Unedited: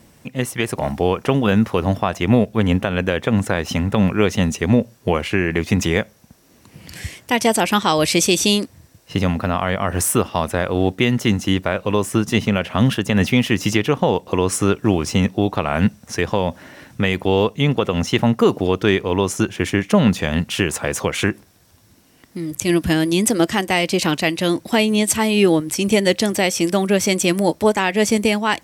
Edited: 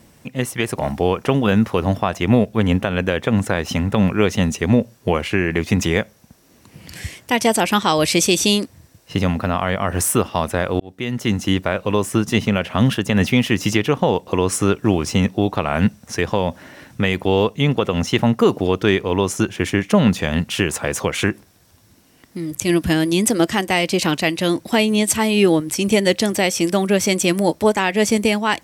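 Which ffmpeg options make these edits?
-filter_complex "[0:a]asplit=2[s0][s1];[s0]atrim=end=10.8,asetpts=PTS-STARTPTS,afade=t=out:st=10.796:d=0.004:c=hsin[s2];[s1]atrim=start=10.8,asetpts=PTS-STARTPTS,afade=t=in:d=0.63[s3];[s2][s3]concat=n=2:v=0:a=1"

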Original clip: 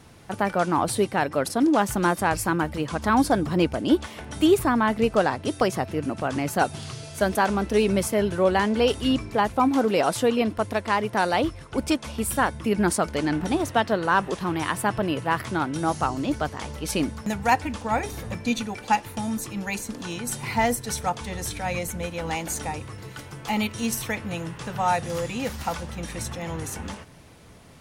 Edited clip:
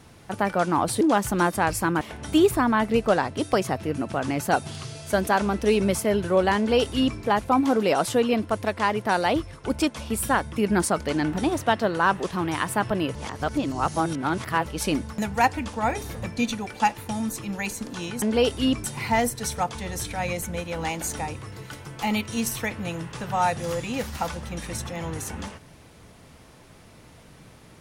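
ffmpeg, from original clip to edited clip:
-filter_complex "[0:a]asplit=7[s0][s1][s2][s3][s4][s5][s6];[s0]atrim=end=1.012[s7];[s1]atrim=start=1.648:end=2.652[s8];[s2]atrim=start=4.088:end=15.232[s9];[s3]atrim=start=15.228:end=16.742,asetpts=PTS-STARTPTS,areverse[s10];[s4]atrim=start=16.738:end=20.302[s11];[s5]atrim=start=8.648:end=9.272[s12];[s6]atrim=start=20.298[s13];[s7][s8]acrossfade=d=0.004:c1=hsin:c2=hsin[s14];[s14][s9]acrossfade=d=0.004:c1=hsin:c2=hsin[s15];[s15][s10]acrossfade=d=0.004:c1=hsin:c2=hsin[s16];[s16][s11]acrossfade=d=0.004:c1=hsin:c2=hsin[s17];[s17][s12]acrossfade=d=0.004:c1=hsin:c2=hsin[s18];[s18][s13]acrossfade=d=0.004:c1=hsin:c2=hsin"

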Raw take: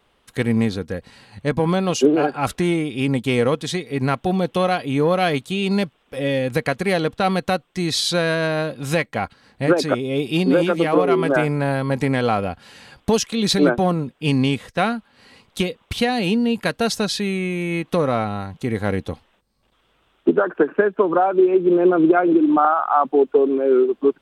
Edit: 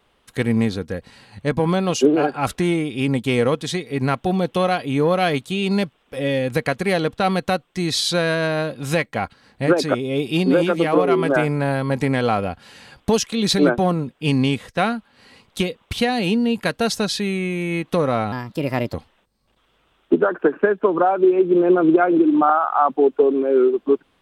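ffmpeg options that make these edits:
-filter_complex "[0:a]asplit=3[s0][s1][s2];[s0]atrim=end=18.324[s3];[s1]atrim=start=18.32:end=19.09,asetpts=PTS-STARTPTS,asetrate=55125,aresample=44100[s4];[s2]atrim=start=19.086[s5];[s3][s4]acrossfade=d=0.004:c1=hsin:c2=hsin[s6];[s6][s5]acrossfade=d=0.004:c1=hsin:c2=hsin"

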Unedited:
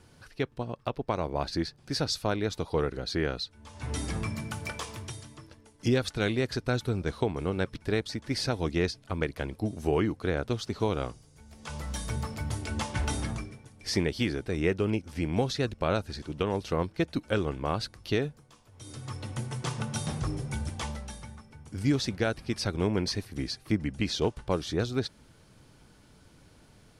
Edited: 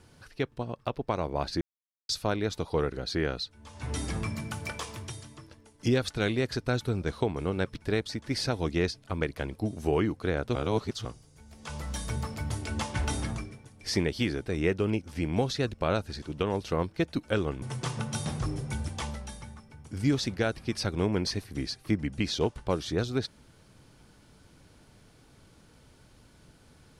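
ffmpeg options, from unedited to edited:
-filter_complex "[0:a]asplit=6[s0][s1][s2][s3][s4][s5];[s0]atrim=end=1.61,asetpts=PTS-STARTPTS,afade=t=out:st=1.606:d=0.004:c=hsin[s6];[s1]atrim=start=1.61:end=2.09,asetpts=PTS-STARTPTS,volume=0[s7];[s2]atrim=start=2.09:end=10.552,asetpts=PTS-STARTPTS,afade=t=in:d=0.004:c=hsin[s8];[s3]atrim=start=10.548:end=11.052,asetpts=PTS-STARTPTS,areverse[s9];[s4]atrim=start=11.048:end=17.622[s10];[s5]atrim=start=19.428[s11];[s6][s7][s8]concat=n=3:v=0:a=1[s12];[s12][s9]acrossfade=d=0.004:c1=hsin:c2=hsin[s13];[s13][s10]acrossfade=d=0.004:c1=hsin:c2=hsin[s14];[s14][s11]acrossfade=d=0.004:c1=hsin:c2=hsin"

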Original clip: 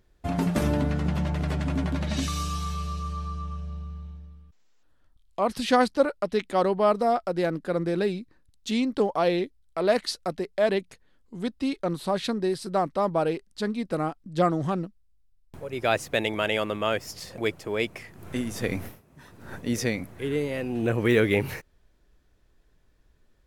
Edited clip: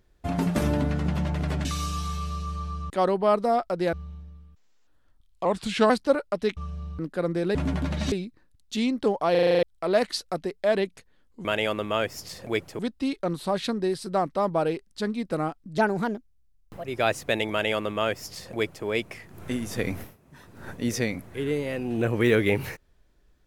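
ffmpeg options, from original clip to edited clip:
-filter_complex "[0:a]asplit=22[s0][s1][s2][s3][s4][s5][s6][s7][s8][s9][s10][s11][s12][s13][s14][s15][s16][s17][s18][s19][s20][s21];[s0]atrim=end=1.652[s22];[s1]atrim=start=2.218:end=3.472[s23];[s2]atrim=start=6.468:end=7.502[s24];[s3]atrim=start=3.888:end=5.414[s25];[s4]atrim=start=5.41:end=5.8,asetpts=PTS-STARTPTS,asetrate=38367,aresample=44100[s26];[s5]atrim=start=5.796:end=6.472[s27];[s6]atrim=start=3.468:end=3.892[s28];[s7]atrim=start=7.498:end=8.062[s29];[s8]atrim=start=1.648:end=2.222[s30];[s9]atrim=start=8.058:end=9.292[s31];[s10]atrim=start=9.248:end=9.292[s32];[s11]atrim=start=9.248:end=9.292[s33];[s12]atrim=start=9.248:end=9.292[s34];[s13]atrim=start=9.248:end=9.292[s35];[s14]atrim=start=9.248:end=9.292[s36];[s15]atrim=start=9.248:end=9.292[s37];[s16]atrim=start=9.248:end=9.292[s38];[s17]atrim=start=9.568:end=11.392[s39];[s18]atrim=start=16.358:end=17.702[s40];[s19]atrim=start=11.388:end=14.384[s41];[s20]atrim=start=14.38:end=15.69,asetpts=PTS-STARTPTS,asetrate=54243,aresample=44100,atrim=end_sample=46968,asetpts=PTS-STARTPTS[s42];[s21]atrim=start=15.686[s43];[s22][s23]acrossfade=d=0.004:c1=hsin:c2=hsin[s44];[s44][s24]acrossfade=d=0.004:c1=hsin:c2=hsin[s45];[s45][s25]acrossfade=d=0.004:c1=hsin:c2=hsin[s46];[s46][s26]acrossfade=d=0.004:c1=hsin:c2=hsin[s47];[s47][s27]acrossfade=d=0.004:c1=hsin:c2=hsin[s48];[s48][s28]acrossfade=d=0.004:c1=hsin:c2=hsin[s49];[s49][s29]acrossfade=d=0.004:c1=hsin:c2=hsin[s50];[s50][s30]acrossfade=d=0.004:c1=hsin:c2=hsin[s51];[s51][s31]acrossfade=d=0.004:c1=hsin:c2=hsin[s52];[s52][s32]acrossfade=d=0.004:c1=hsin:c2=hsin[s53];[s53][s33]acrossfade=d=0.004:c1=hsin:c2=hsin[s54];[s54][s34]acrossfade=d=0.004:c1=hsin:c2=hsin[s55];[s55][s35]acrossfade=d=0.004:c1=hsin:c2=hsin[s56];[s56][s36]acrossfade=d=0.004:c1=hsin:c2=hsin[s57];[s57][s37]acrossfade=d=0.004:c1=hsin:c2=hsin[s58];[s58][s38]acrossfade=d=0.004:c1=hsin:c2=hsin[s59];[s59][s39]acrossfade=d=0.004:c1=hsin:c2=hsin[s60];[s60][s40]acrossfade=d=0.004:c1=hsin:c2=hsin[s61];[s61][s41]acrossfade=d=0.004:c1=hsin:c2=hsin[s62];[s62][s42]acrossfade=d=0.004:c1=hsin:c2=hsin[s63];[s63][s43]acrossfade=d=0.004:c1=hsin:c2=hsin"

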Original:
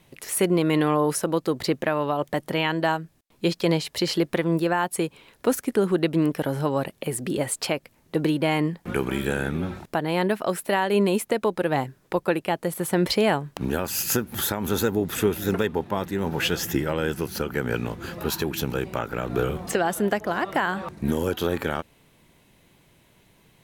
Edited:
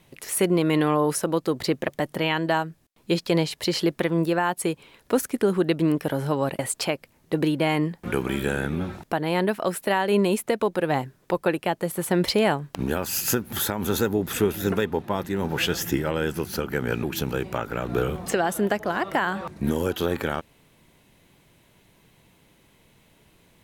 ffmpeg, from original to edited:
-filter_complex "[0:a]asplit=4[s0][s1][s2][s3];[s0]atrim=end=1.882[s4];[s1]atrim=start=2.218:end=6.932[s5];[s2]atrim=start=7.408:end=17.852[s6];[s3]atrim=start=18.438[s7];[s4][s5]acrossfade=d=0.004:c1=hsin:c2=hsin[s8];[s8][s6]acrossfade=d=0.004:c1=hsin:c2=hsin[s9];[s9][s7]acrossfade=d=0.004:c1=hsin:c2=hsin"

